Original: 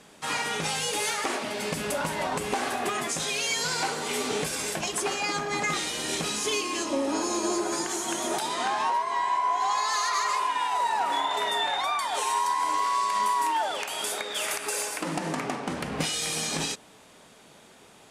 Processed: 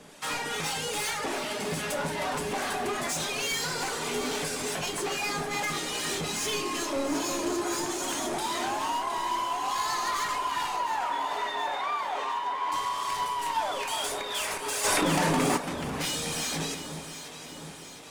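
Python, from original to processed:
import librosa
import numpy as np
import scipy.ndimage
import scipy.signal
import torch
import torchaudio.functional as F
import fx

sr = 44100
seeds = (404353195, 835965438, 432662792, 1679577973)

y = fx.cvsd(x, sr, bps=64000)
y = fx.dereverb_blind(y, sr, rt60_s=0.59)
y = fx.harmonic_tremolo(y, sr, hz=2.4, depth_pct=50, crossover_hz=770.0)
y = 10.0 ** (-32.5 / 20.0) * np.tanh(y / 10.0 ** (-32.5 / 20.0))
y = fx.bandpass_edges(y, sr, low_hz=260.0, high_hz=2600.0, at=(10.76, 12.72))
y = fx.echo_alternate(y, sr, ms=357, hz=1600.0, feedback_pct=76, wet_db=-8.0)
y = fx.room_shoebox(y, sr, seeds[0], volume_m3=110.0, walls='mixed', distance_m=0.33)
y = fx.env_flatten(y, sr, amount_pct=100, at=(14.83, 15.56), fade=0.02)
y = y * 10.0 ** (4.5 / 20.0)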